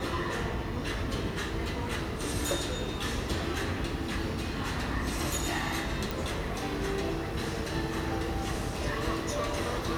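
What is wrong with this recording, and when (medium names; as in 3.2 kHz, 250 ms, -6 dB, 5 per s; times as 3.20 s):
6.11 s: pop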